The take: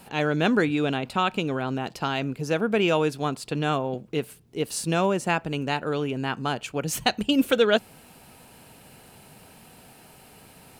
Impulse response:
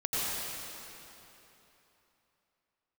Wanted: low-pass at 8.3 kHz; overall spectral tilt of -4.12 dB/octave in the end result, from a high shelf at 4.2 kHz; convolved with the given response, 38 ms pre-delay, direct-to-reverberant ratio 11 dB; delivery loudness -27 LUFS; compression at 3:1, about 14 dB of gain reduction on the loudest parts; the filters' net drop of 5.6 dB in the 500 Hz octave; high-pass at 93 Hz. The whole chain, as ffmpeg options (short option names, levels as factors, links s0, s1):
-filter_complex "[0:a]highpass=93,lowpass=8300,equalizer=f=500:t=o:g=-7,highshelf=f=4200:g=4.5,acompressor=threshold=0.0126:ratio=3,asplit=2[s0][s1];[1:a]atrim=start_sample=2205,adelay=38[s2];[s1][s2]afir=irnorm=-1:irlink=0,volume=0.1[s3];[s0][s3]amix=inputs=2:normalize=0,volume=3.55"